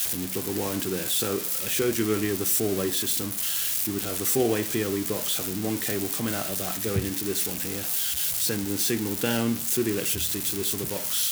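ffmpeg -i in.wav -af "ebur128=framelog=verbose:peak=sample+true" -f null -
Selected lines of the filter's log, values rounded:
Integrated loudness:
  I:         -25.2 LUFS
  Threshold: -35.2 LUFS
Loudness range:
  LRA:         2.0 LU
  Threshold: -45.1 LUFS
  LRA low:   -26.3 LUFS
  LRA high:  -24.3 LUFS
Sample peak:
  Peak:      -11.4 dBFS
True peak:
  Peak:      -11.4 dBFS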